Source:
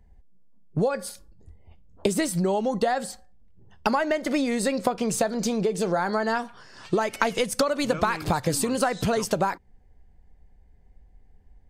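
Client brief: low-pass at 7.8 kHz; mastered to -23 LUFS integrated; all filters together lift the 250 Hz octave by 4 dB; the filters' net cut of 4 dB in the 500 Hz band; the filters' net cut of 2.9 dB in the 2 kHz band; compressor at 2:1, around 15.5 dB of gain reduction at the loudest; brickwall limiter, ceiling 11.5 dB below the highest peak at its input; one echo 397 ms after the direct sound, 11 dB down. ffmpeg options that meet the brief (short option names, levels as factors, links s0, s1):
-af "lowpass=7800,equalizer=f=250:t=o:g=6.5,equalizer=f=500:t=o:g=-6.5,equalizer=f=2000:t=o:g=-3.5,acompressor=threshold=0.00355:ratio=2,alimiter=level_in=2.66:limit=0.0631:level=0:latency=1,volume=0.376,aecho=1:1:397:0.282,volume=8.91"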